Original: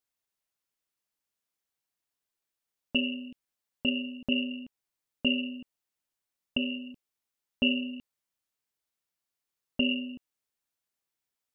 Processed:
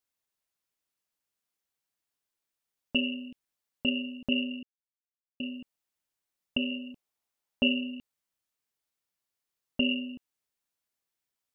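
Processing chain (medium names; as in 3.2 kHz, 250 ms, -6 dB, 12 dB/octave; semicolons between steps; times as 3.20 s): 4.63–5.40 s: mute; 6.71–7.67 s: peaking EQ 770 Hz +5 dB 1.3 oct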